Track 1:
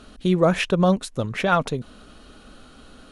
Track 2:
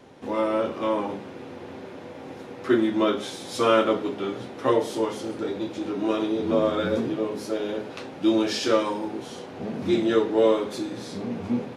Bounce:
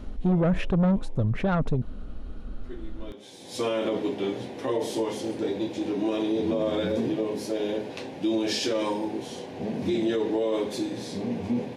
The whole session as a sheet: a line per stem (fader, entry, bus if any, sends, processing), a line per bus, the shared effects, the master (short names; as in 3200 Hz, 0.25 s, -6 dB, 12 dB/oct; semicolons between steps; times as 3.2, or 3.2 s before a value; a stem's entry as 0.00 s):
-5.0 dB, 0.00 s, no send, tilt -4 dB/oct; soft clip -10.5 dBFS, distortion -12 dB
+1.0 dB, 0.00 s, no send, bell 1300 Hz -13.5 dB 0.36 oct; auto duck -22 dB, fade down 0.40 s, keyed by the first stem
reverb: off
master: limiter -18 dBFS, peak gain reduction 10.5 dB